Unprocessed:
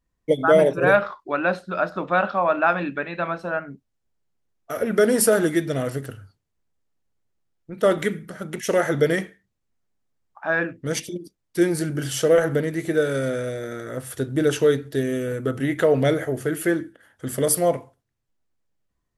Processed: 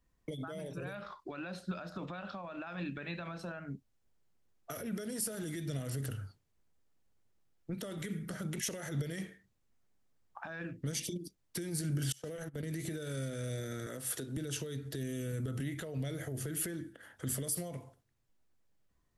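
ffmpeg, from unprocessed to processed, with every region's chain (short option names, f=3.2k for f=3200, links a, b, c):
-filter_complex "[0:a]asettb=1/sr,asplit=3[a][b][c];[a]atrim=end=12.124[d];[b]atrim=start=12.12:end=12.63,asetpts=PTS-STARTPTS,afade=t=in:d=0.004:c=qsin,afade=t=out:st=0.506:d=0.004:c=qsin,agate=range=-31dB:threshold=-23dB:ratio=16:release=100:detection=peak,acompressor=threshold=-25dB:ratio=6:attack=3.2:release=140:knee=1:detection=peak[e];[c]atrim=start=12.626[f];[d][e]acrossfade=d=0.004:c1=hsin:c2=qsin[g];[g][f]acrossfade=d=0.004:c1=qsin:c2=hsin,asettb=1/sr,asplit=3[h][i][j];[h]atrim=end=13.864[k];[i]atrim=start=13.86:end=14.37,asetpts=PTS-STARTPTS,afade=t=in:d=0.004:c=qsin,afade=t=out:st=0.506:d=0.004:c=qsin,highpass=230,acompressor=threshold=-32dB:ratio=1.5:attack=3.2:release=140:knee=1:detection=peak[l];[j]atrim=start=14.366[m];[k][l]acrossfade=d=0.004:c1=hsin:c2=qsin[n];[n][m]acrossfade=d=0.004:c1=qsin:c2=hsin,acompressor=threshold=-25dB:ratio=5,alimiter=level_in=1dB:limit=-24dB:level=0:latency=1:release=30,volume=-1dB,acrossover=split=200|3000[o][p][q];[p]acompressor=threshold=-45dB:ratio=6[r];[o][r][q]amix=inputs=3:normalize=0,volume=1dB"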